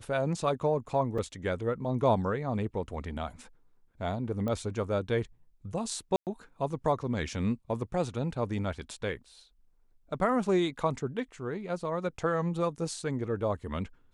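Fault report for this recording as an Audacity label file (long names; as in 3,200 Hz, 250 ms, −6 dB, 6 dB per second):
1.180000	1.190000	drop-out 5.2 ms
4.480000	4.480000	click −22 dBFS
6.160000	6.270000	drop-out 108 ms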